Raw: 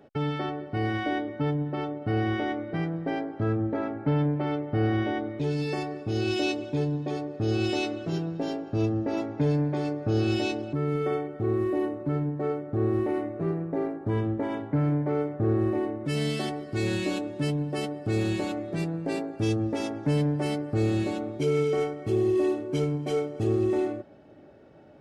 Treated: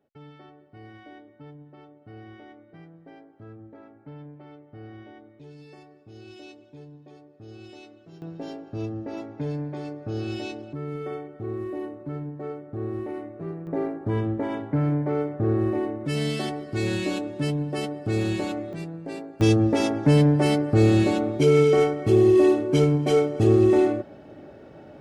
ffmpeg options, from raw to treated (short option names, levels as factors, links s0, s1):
-af "asetnsamples=n=441:p=0,asendcmd='8.22 volume volume -5.5dB;13.67 volume volume 1.5dB;18.73 volume volume -5dB;19.41 volume volume 7.5dB',volume=0.126"